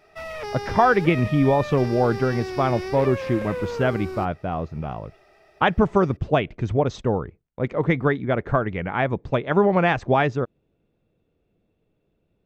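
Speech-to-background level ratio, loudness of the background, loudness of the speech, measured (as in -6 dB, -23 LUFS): 9.5 dB, -32.0 LUFS, -22.5 LUFS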